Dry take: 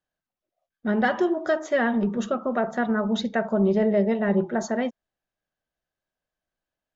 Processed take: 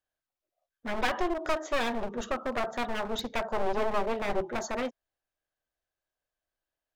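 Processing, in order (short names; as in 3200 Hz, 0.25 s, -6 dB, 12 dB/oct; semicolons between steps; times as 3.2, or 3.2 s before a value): one-sided fold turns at -24 dBFS; bell 190 Hz -12.5 dB 0.69 oct; gain -2.5 dB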